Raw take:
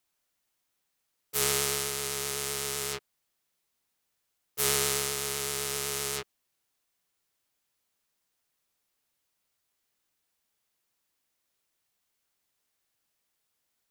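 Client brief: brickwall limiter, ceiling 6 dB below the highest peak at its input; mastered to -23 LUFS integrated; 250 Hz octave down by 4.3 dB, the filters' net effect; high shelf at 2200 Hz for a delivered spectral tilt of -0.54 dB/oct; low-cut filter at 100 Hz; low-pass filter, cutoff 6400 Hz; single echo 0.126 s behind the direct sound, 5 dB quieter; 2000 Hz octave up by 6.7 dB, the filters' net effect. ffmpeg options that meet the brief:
-af "highpass=100,lowpass=6.4k,equalizer=f=250:t=o:g=-7.5,equalizer=f=2k:t=o:g=3.5,highshelf=f=2.2k:g=8.5,alimiter=limit=-9.5dB:level=0:latency=1,aecho=1:1:126:0.562,volume=3.5dB"

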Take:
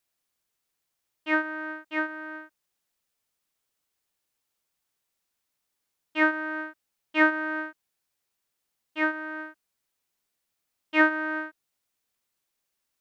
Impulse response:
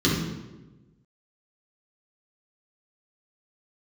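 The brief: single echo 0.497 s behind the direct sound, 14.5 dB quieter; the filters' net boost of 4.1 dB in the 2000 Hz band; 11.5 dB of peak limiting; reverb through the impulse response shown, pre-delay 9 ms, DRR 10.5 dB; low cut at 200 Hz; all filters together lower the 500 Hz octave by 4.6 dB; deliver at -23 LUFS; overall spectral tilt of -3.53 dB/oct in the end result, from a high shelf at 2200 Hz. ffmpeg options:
-filter_complex "[0:a]highpass=200,equalizer=f=500:t=o:g=-7,equalizer=f=2k:t=o:g=8,highshelf=f=2.2k:g=-4,alimiter=limit=-17dB:level=0:latency=1,aecho=1:1:497:0.188,asplit=2[a][b];[1:a]atrim=start_sample=2205,adelay=9[c];[b][c]afir=irnorm=-1:irlink=0,volume=-25.5dB[d];[a][d]amix=inputs=2:normalize=0,volume=5.5dB"

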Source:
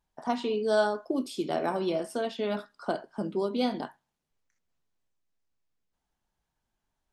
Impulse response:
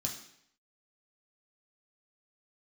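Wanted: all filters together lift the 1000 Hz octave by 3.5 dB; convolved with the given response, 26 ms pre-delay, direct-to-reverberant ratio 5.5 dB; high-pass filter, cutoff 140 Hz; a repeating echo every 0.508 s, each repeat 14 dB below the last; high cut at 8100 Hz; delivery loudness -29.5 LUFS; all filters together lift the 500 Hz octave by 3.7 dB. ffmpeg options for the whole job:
-filter_complex "[0:a]highpass=140,lowpass=8.1k,equalizer=f=500:t=o:g=4,equalizer=f=1k:t=o:g=3,aecho=1:1:508|1016:0.2|0.0399,asplit=2[a][b];[1:a]atrim=start_sample=2205,adelay=26[c];[b][c]afir=irnorm=-1:irlink=0,volume=-6dB[d];[a][d]amix=inputs=2:normalize=0,volume=-3.5dB"

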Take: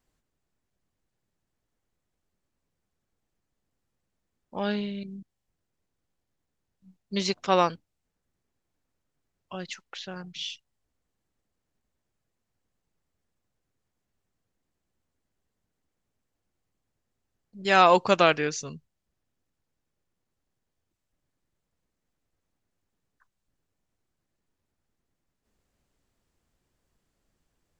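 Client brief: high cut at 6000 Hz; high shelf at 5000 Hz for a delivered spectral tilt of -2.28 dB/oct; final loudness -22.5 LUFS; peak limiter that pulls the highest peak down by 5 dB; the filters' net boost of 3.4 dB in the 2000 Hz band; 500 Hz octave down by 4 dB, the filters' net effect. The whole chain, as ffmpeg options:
-af "lowpass=6k,equalizer=f=500:t=o:g=-5.5,equalizer=f=2k:t=o:g=6,highshelf=f=5k:g=-5.5,volume=4.5dB,alimiter=limit=-4dB:level=0:latency=1"

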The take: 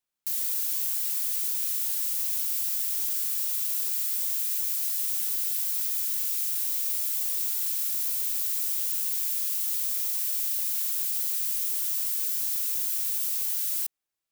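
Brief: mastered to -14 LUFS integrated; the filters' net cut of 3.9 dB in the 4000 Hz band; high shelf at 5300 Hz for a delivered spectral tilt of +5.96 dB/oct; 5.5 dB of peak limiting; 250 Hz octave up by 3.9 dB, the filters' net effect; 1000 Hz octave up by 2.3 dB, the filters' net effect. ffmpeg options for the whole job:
-af "equalizer=f=250:t=o:g=5,equalizer=f=1k:t=o:g=3,equalizer=f=4k:t=o:g=-8.5,highshelf=f=5.3k:g=5.5,volume=7.5dB,alimiter=limit=-7dB:level=0:latency=1"

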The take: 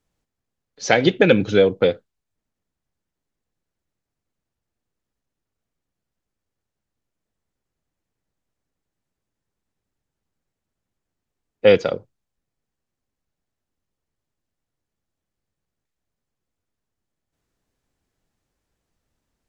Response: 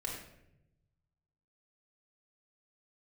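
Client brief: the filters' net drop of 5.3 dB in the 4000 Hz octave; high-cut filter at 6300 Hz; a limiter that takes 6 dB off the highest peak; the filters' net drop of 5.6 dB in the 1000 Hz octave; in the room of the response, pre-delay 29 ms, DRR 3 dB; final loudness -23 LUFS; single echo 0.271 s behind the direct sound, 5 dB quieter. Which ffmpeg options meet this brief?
-filter_complex "[0:a]lowpass=6.3k,equalizer=f=1k:t=o:g=-9,equalizer=f=4k:t=o:g=-6,alimiter=limit=-9dB:level=0:latency=1,aecho=1:1:271:0.562,asplit=2[a][b];[1:a]atrim=start_sample=2205,adelay=29[c];[b][c]afir=irnorm=-1:irlink=0,volume=-4.5dB[d];[a][d]amix=inputs=2:normalize=0,volume=-4dB"

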